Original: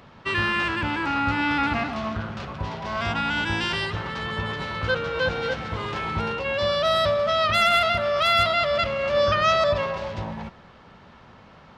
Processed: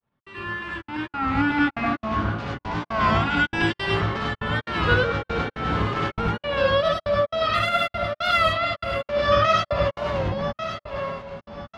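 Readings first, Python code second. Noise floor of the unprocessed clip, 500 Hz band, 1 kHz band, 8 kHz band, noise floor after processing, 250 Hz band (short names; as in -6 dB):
-49 dBFS, +0.5 dB, +0.5 dB, n/a, -83 dBFS, +3.5 dB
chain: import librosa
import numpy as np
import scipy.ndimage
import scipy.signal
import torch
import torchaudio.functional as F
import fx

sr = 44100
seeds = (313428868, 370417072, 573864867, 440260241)

y = fx.fade_in_head(x, sr, length_s=2.69)
y = fx.high_shelf(y, sr, hz=3400.0, db=-9.0)
y = fx.echo_feedback(y, sr, ms=1123, feedback_pct=24, wet_db=-12.5)
y = fx.step_gate(y, sr, bpm=170, pattern='x..xxx.x..', floor_db=-60.0, edge_ms=4.5)
y = fx.high_shelf(y, sr, hz=9800.0, db=4.5)
y = fx.rev_gated(y, sr, seeds[0], gate_ms=120, shape='rising', drr_db=-4.5)
y = fx.rider(y, sr, range_db=4, speed_s=2.0)
y = fx.record_warp(y, sr, rpm=33.33, depth_cents=100.0)
y = y * librosa.db_to_amplitude(-1.0)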